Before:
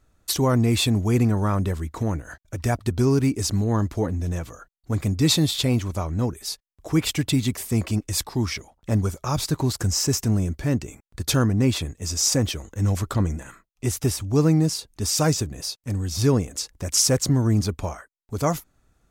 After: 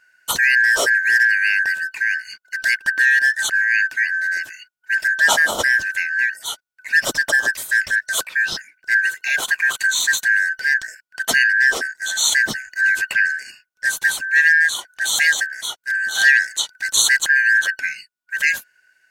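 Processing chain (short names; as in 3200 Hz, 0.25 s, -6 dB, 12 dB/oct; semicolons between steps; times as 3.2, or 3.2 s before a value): four-band scrambler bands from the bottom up 3142; 16.13–16.87 dynamic EQ 4200 Hz, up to +6 dB, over -36 dBFS, Q 0.87; gain +4 dB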